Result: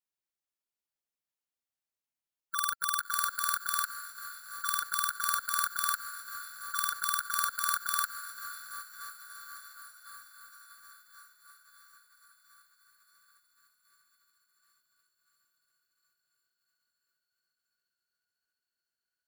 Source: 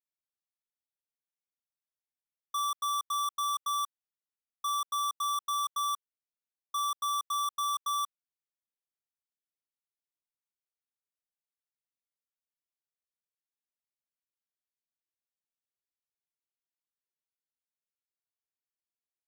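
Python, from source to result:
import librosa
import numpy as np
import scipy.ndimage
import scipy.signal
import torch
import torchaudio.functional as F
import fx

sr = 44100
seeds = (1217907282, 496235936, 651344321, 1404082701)

y = fx.echo_diffused(x, sr, ms=602, feedback_pct=70, wet_db=-13.5)
y = fx.formant_shift(y, sr, semitones=4)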